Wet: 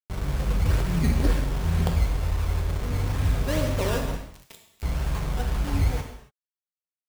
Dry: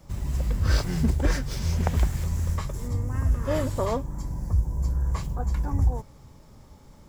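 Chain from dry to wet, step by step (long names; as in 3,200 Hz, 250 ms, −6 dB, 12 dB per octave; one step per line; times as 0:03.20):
0:01.92–0:02.69: spectral envelope exaggerated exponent 3
head-to-tape spacing loss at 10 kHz 44 dB
far-end echo of a speakerphone 150 ms, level −15 dB
sample-and-hold swept by an LFO 14×, swing 100% 2.1 Hz
0:04.17–0:04.83: high-pass filter 410 Hz 12 dB per octave
bit reduction 6 bits
reverb whose tail is shaped and stops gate 310 ms falling, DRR 2 dB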